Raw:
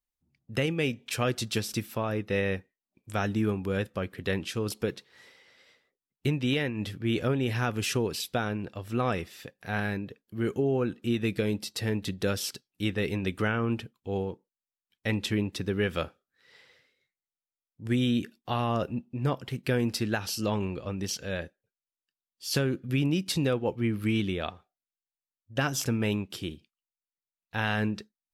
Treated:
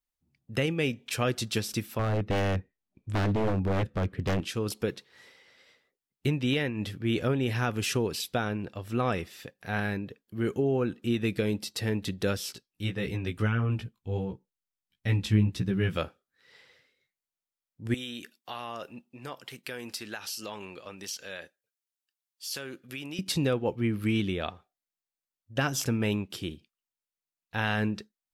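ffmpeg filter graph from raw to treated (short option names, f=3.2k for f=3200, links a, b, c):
-filter_complex "[0:a]asettb=1/sr,asplit=3[a][b][c];[a]atrim=end=1.994[d];[b]atrim=start=1.99:end=4.41,asetpts=PTS-STARTPTS,afade=t=in:d=0.004:c=qsin,afade=t=out:st=2.416:d=0.004:c=qsin,aemphasis=mode=reproduction:type=bsi,aeval=exprs='0.0891*(abs(mod(val(0)/0.0891+3,4)-2)-1)':c=same[e];[c]atrim=start=4.406[f];[d][e]acrossfade=d=0.004:c1=hsin:c2=qsin[g];[g][f]acrossfade=d=0.004:c1=qsin:c2=hsin,asettb=1/sr,asplit=3[h][i][j];[h]atrim=end=12.374[k];[i]atrim=start=12.37:end=15.97,asetpts=PTS-STARTPTS,afade=t=in:d=0.004:c=qsin,afade=t=out:st=3.596:d=0.004:c=qsin,asubboost=boost=5:cutoff=200,flanger=delay=15.5:depth=3.3:speed=1.5[l];[j]atrim=start=15.966[m];[k][l]acrossfade=d=0.004:c1=hsin:c2=qsin[n];[n][m]acrossfade=d=0.004:c1=qsin:c2=hsin,asettb=1/sr,asplit=3[o][p][q];[o]atrim=end=17.944[r];[p]atrim=start=17.94:end=23.19,asetpts=PTS-STARTPTS,afade=t=in:d=0.004:c=qsin,afade=t=out:st=5.246:d=0.004:c=qsin,highpass=f=940:p=1,highshelf=f=4.9k:g=4,acompressor=threshold=-36dB:ratio=2:attack=3.2:release=140:knee=1:detection=peak[s];[q]atrim=start=23.186[t];[r][s]acrossfade=d=0.004:c1=hsin:c2=qsin[u];[u][t]acrossfade=d=0.004:c1=qsin:c2=hsin"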